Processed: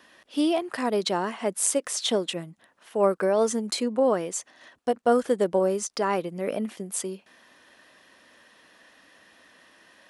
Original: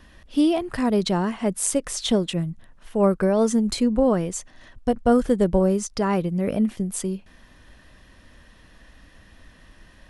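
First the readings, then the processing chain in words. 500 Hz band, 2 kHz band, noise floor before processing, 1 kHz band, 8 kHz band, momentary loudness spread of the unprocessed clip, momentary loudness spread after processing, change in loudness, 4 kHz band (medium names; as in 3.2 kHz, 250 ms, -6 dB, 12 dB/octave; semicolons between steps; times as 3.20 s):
-1.5 dB, 0.0 dB, -52 dBFS, 0.0 dB, 0.0 dB, 9 LU, 10 LU, -3.5 dB, 0.0 dB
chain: high-pass 370 Hz 12 dB/octave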